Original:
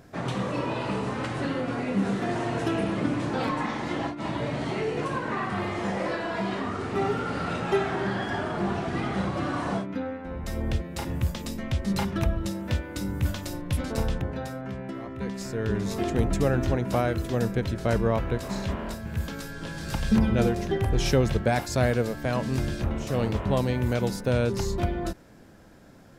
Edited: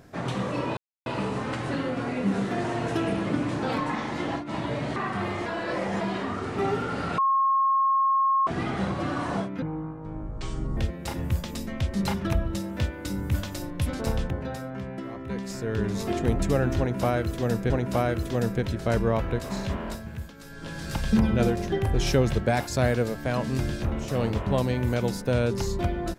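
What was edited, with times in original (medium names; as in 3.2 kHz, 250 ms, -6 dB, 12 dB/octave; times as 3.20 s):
0.77 s: insert silence 0.29 s
4.67–5.33 s: delete
5.83–6.38 s: reverse
7.55–8.84 s: bleep 1.08 kHz -19 dBFS
9.99–10.68 s: speed 60%
16.69–17.61 s: loop, 2 plays
18.91–19.75 s: dip -12.5 dB, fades 0.41 s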